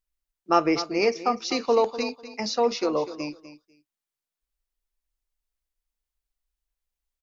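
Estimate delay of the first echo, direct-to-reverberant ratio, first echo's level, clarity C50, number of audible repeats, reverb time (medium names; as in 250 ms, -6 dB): 248 ms, no reverb, -13.5 dB, no reverb, 2, no reverb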